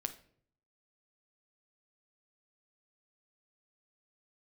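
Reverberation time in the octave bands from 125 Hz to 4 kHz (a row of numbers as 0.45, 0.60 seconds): 0.85, 0.75, 0.65, 0.50, 0.45, 0.40 seconds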